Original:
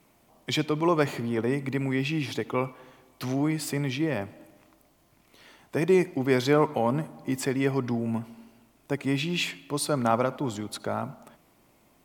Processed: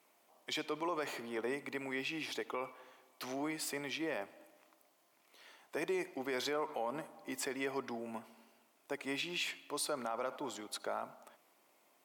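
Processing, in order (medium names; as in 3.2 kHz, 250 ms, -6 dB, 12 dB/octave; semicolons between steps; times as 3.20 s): high-pass 460 Hz 12 dB/octave; peak limiter -22 dBFS, peak gain reduction 11 dB; trim -5.5 dB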